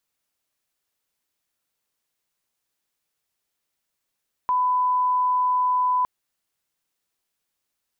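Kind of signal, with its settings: line-up tone -18 dBFS 1.56 s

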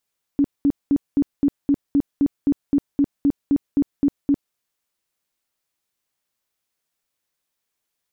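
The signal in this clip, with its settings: tone bursts 283 Hz, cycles 15, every 0.26 s, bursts 16, -13 dBFS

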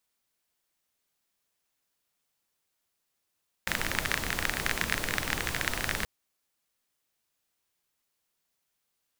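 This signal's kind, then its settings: rain from filtered ticks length 2.38 s, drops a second 26, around 1800 Hz, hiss -0.5 dB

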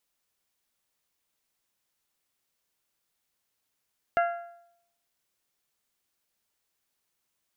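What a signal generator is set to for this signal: metal hit bell, lowest mode 689 Hz, modes 5, decay 0.74 s, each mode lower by 5.5 dB, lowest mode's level -19.5 dB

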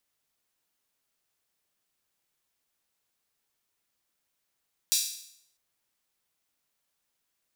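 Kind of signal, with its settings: open hi-hat length 0.65 s, high-pass 4500 Hz, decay 0.69 s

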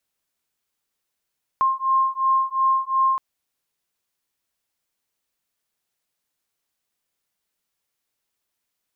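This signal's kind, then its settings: beating tones 1060 Hz, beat 2.8 Hz, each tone -20.5 dBFS 1.57 s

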